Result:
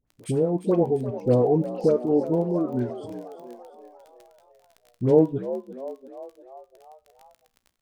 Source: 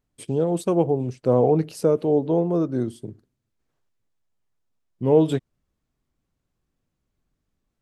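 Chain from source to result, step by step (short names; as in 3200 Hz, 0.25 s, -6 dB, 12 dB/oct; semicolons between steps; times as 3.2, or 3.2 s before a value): block floating point 5-bit; reverb removal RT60 2 s; treble ducked by the level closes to 730 Hz, closed at -19.5 dBFS; dispersion highs, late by 75 ms, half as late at 1100 Hz; crackle 14/s -37 dBFS; resonator 60 Hz, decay 0.32 s, harmonics all, mix 50%; frequency-shifting echo 0.347 s, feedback 56%, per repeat +60 Hz, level -13 dB; gain +4.5 dB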